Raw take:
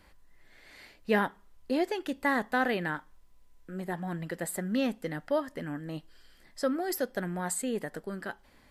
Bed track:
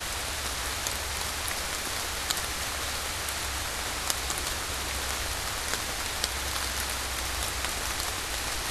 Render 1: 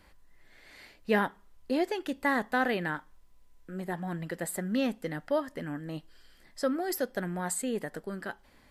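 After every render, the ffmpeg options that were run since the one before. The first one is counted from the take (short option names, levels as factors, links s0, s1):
-af anull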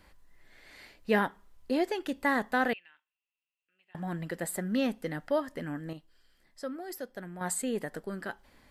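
-filter_complex "[0:a]asettb=1/sr,asplit=3[s0][s1][s2];[s0]atrim=end=2.734[s3];[s1]atrim=start=2.73:end=3.95,asetpts=PTS-STARTPTS,afade=t=in:d=0.004:c=qsin,afade=t=out:st=1.216:d=0.004:c=qsin,bandpass=f=2700:t=q:w=17[s4];[s2]atrim=start=3.946[s5];[s3][s4]acrossfade=d=0.004:c1=hsin:c2=qsin[s6];[s6][s5]acrossfade=d=0.004:c1=qsin:c2=hsin,asettb=1/sr,asplit=3[s7][s8][s9];[s7]atrim=end=4.634[s10];[s8]atrim=start=4.63:end=5.07,asetpts=PTS-STARTPTS,afade=t=in:d=0.004:c=qsin,afade=t=out:st=0.436:d=0.004:c=qsin,bandreject=f=7500:w=11[s11];[s9]atrim=start=5.066[s12];[s10][s11]acrossfade=d=0.004:c1=hsin:c2=qsin[s13];[s13][s12]acrossfade=d=0.004:c1=qsin:c2=hsin,asplit=3[s14][s15][s16];[s14]atrim=end=5.932[s17];[s15]atrim=start=5.928:end=7.412,asetpts=PTS-STARTPTS,volume=0.376[s18];[s16]atrim=start=7.408[s19];[s17][s18]acrossfade=d=0.004:c1=hsin:c2=hsin[s20];[s20][s19]acrossfade=d=0.004:c1=hsin:c2=hsin"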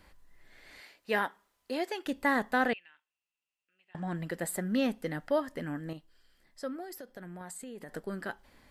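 -filter_complex "[0:a]asettb=1/sr,asplit=3[s0][s1][s2];[s0]atrim=end=0.804[s3];[s1]atrim=start=0.8:end=2.06,asetpts=PTS-STARTPTS,afade=t=in:d=0.004:c=qsin,afade=t=out:st=1.256:d=0.004:c=qsin,highpass=f=620:p=1[s4];[s2]atrim=start=2.056[s5];[s3][s4]acrossfade=d=0.004:c1=hsin:c2=qsin[s6];[s6][s5]acrossfade=d=0.004:c1=qsin:c2=hsin,asettb=1/sr,asplit=3[s7][s8][s9];[s7]atrim=end=2.674[s10];[s8]atrim=start=2.67:end=4.15,asetpts=PTS-STARTPTS,afade=t=in:d=0.004:c=qsin,afade=t=out:st=1.476:d=0.004:c=qsin,lowpass=f=9300:w=0.5412,lowpass=f=9300:w=1.3066[s11];[s9]atrim=start=4.146[s12];[s10][s11]acrossfade=d=0.004:c1=hsin:c2=qsin[s13];[s13][s12]acrossfade=d=0.004:c1=qsin:c2=hsin,asettb=1/sr,asplit=3[s14][s15][s16];[s14]atrim=end=6.844[s17];[s15]atrim=start=6.84:end=7.89,asetpts=PTS-STARTPTS,afade=t=in:d=0.004:c=qsin,afade=t=out:st=1.046:d=0.004:c=qsin,acompressor=threshold=0.01:ratio=12:attack=3.2:release=140:knee=1:detection=peak[s18];[s16]atrim=start=7.886[s19];[s17][s18]acrossfade=d=0.004:c1=hsin:c2=qsin[s20];[s20][s19]acrossfade=d=0.004:c1=qsin:c2=hsin"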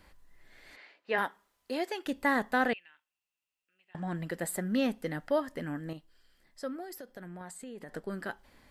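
-filter_complex "[0:a]asplit=3[s0][s1][s2];[s0]afade=t=out:st=0.75:d=0.02[s3];[s1]highpass=280,lowpass=3200,afade=t=in:st=0.75:d=0.02,afade=t=out:st=1.17:d=0.02[s4];[s2]afade=t=in:st=1.17:d=0.02[s5];[s3][s4][s5]amix=inputs=3:normalize=0,asettb=1/sr,asplit=3[s6][s7][s8];[s6]atrim=end=7.284[s9];[s7]atrim=start=7.28:end=8.1,asetpts=PTS-STARTPTS,afade=t=in:d=0.004:c=qsin,afade=t=out:st=0.816:d=0.004:c=qsin,highshelf=f=10000:g=-8.5[s10];[s8]atrim=start=8.096[s11];[s9][s10]acrossfade=d=0.004:c1=hsin:c2=qsin[s12];[s12][s11]acrossfade=d=0.004:c1=qsin:c2=hsin"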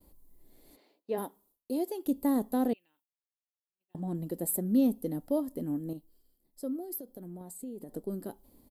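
-af "agate=range=0.0224:threshold=0.00112:ratio=3:detection=peak,firequalizer=gain_entry='entry(160,0);entry(270,6);entry(570,-3);entry(1000,-9);entry(1600,-24);entry(3900,-8);entry(5600,-8);entry(12000,12)':delay=0.05:min_phase=1"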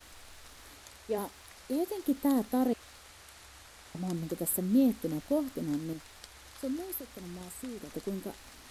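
-filter_complex "[1:a]volume=0.0891[s0];[0:a][s0]amix=inputs=2:normalize=0"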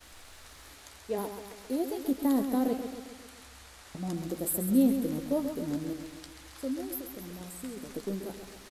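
-filter_complex "[0:a]asplit=2[s0][s1];[s1]adelay=15,volume=0.266[s2];[s0][s2]amix=inputs=2:normalize=0,aecho=1:1:134|268|402|536|670|804|938:0.376|0.207|0.114|0.0625|0.0344|0.0189|0.0104"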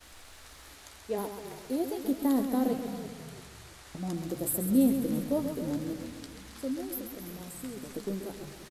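-filter_complex "[0:a]asplit=5[s0][s1][s2][s3][s4];[s1]adelay=334,afreqshift=-48,volume=0.224[s5];[s2]adelay=668,afreqshift=-96,volume=0.0891[s6];[s3]adelay=1002,afreqshift=-144,volume=0.0359[s7];[s4]adelay=1336,afreqshift=-192,volume=0.0143[s8];[s0][s5][s6][s7][s8]amix=inputs=5:normalize=0"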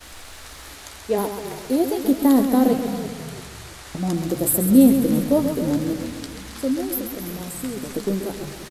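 -af "volume=3.55"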